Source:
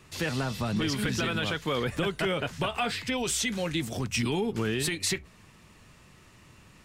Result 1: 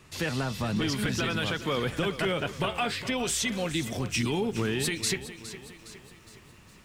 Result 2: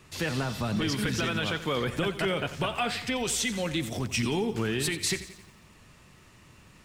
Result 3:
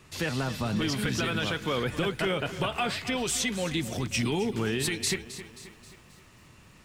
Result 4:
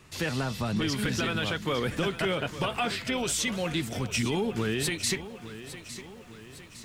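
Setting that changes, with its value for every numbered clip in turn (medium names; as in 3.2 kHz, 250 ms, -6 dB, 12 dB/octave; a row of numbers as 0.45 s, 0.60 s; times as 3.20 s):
bit-crushed delay, time: 412 ms, 88 ms, 266 ms, 858 ms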